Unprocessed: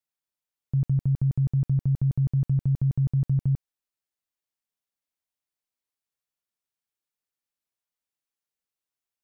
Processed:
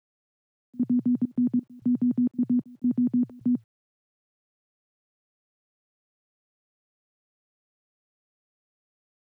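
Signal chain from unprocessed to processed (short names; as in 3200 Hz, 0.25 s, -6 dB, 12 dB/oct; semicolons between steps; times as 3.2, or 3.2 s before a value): frequency shift +110 Hz; step gate "xx.xx..xx" 132 bpm -24 dB; requantised 12-bit, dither none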